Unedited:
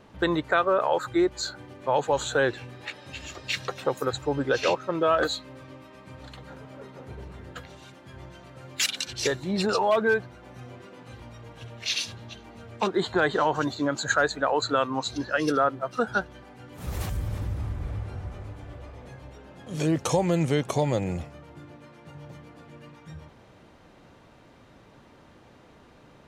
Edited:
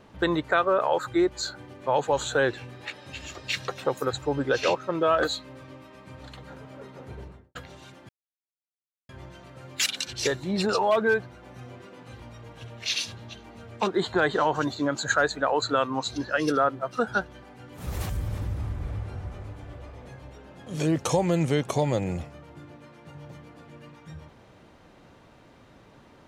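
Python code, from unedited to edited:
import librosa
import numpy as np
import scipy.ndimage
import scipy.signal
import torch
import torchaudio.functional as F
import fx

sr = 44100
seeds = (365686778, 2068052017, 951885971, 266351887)

y = fx.studio_fade_out(x, sr, start_s=7.18, length_s=0.37)
y = fx.edit(y, sr, fx.insert_silence(at_s=8.09, length_s=1.0), tone=tone)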